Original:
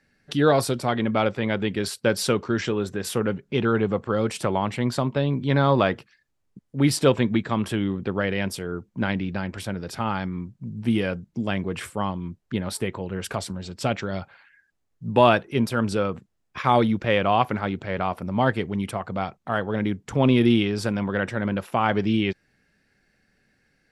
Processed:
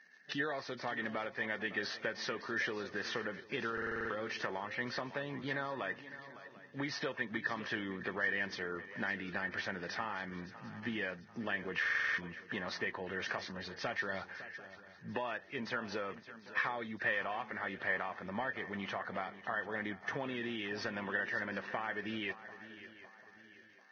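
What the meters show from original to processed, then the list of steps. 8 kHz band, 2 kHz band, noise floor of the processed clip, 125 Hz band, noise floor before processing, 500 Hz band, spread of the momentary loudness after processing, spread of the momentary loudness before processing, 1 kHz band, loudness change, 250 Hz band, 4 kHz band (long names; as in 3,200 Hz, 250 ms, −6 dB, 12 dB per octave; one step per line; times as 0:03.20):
−20.0 dB, −4.0 dB, −59 dBFS, −23.5 dB, −71 dBFS, −17.0 dB, 11 LU, 11 LU, −15.5 dB, −14.0 dB, −19.5 dB, −12.0 dB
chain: running median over 5 samples
high-pass filter 890 Hz 6 dB per octave
high-shelf EQ 4,100 Hz −11.5 dB
transient designer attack −2 dB, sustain +2 dB
downward compressor 12 to 1, threshold −36 dBFS, peak gain reduction 19.5 dB
surface crackle 56 per second −52 dBFS
hollow resonant body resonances 1,800 Hz, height 17 dB, ringing for 30 ms
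on a send: feedback echo with a long and a short gap by turns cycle 743 ms, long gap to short 3 to 1, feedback 37%, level −15 dB
on the sum: buffer that repeats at 0:03.73/0:11.81, samples 2,048, times 7
Ogg Vorbis 16 kbit/s 16,000 Hz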